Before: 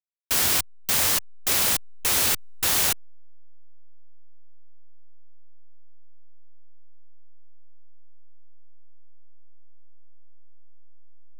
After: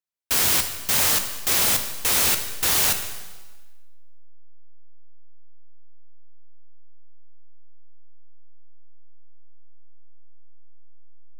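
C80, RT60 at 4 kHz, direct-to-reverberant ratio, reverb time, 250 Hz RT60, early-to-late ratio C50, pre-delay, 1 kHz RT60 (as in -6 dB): 10.0 dB, 1.2 s, 5.5 dB, 1.3 s, 1.4 s, 8.5 dB, 4 ms, 1.3 s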